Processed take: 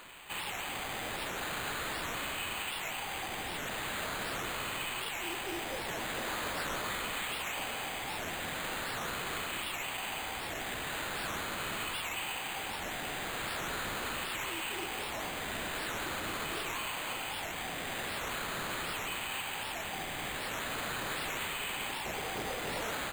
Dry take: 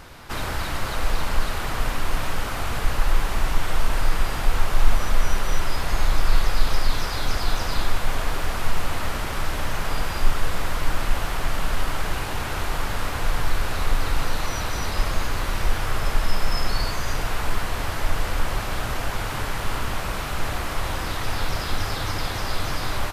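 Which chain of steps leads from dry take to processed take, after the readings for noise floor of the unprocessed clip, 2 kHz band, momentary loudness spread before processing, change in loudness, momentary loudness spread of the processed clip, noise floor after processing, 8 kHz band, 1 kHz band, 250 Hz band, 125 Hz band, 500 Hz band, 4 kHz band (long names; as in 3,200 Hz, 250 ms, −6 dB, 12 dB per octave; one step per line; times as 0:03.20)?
−28 dBFS, −5.5 dB, 3 LU, −8.5 dB, 2 LU, −39 dBFS, −5.5 dB, −8.5 dB, −9.5 dB, −19.5 dB, −8.0 dB, −5.5 dB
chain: rippled gain that drifts along the octave scale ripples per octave 0.65, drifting −0.42 Hz, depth 14 dB
first difference
hollow resonant body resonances 770/3,000 Hz, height 12 dB
bad sample-rate conversion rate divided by 8×, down none, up hold
soft clipping −29.5 dBFS, distortion −18 dB
wow of a warped record 78 rpm, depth 250 cents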